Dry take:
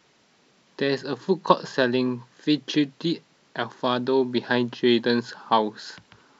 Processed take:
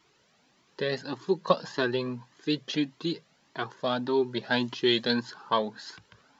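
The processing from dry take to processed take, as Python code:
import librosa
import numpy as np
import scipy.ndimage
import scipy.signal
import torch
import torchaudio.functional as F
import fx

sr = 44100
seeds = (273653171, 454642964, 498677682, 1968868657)

y = fx.high_shelf(x, sr, hz=2600.0, db=8.5, at=(4.52, 5.13))
y = fx.comb_cascade(y, sr, direction='rising', hz=1.7)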